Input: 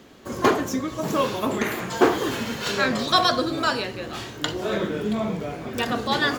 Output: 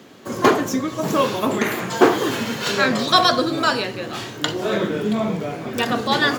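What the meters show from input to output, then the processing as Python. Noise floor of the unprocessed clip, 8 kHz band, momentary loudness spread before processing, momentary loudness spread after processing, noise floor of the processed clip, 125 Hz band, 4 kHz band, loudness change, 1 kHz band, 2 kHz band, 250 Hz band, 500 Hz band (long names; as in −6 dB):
−39 dBFS, +4.0 dB, 10 LU, 10 LU, −35 dBFS, +3.5 dB, +4.0 dB, +4.0 dB, +4.0 dB, +4.0 dB, +4.0 dB, +4.0 dB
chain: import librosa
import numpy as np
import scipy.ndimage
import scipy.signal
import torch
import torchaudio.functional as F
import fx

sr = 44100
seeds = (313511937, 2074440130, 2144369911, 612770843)

y = scipy.signal.sosfilt(scipy.signal.butter(4, 100.0, 'highpass', fs=sr, output='sos'), x)
y = y * librosa.db_to_amplitude(4.0)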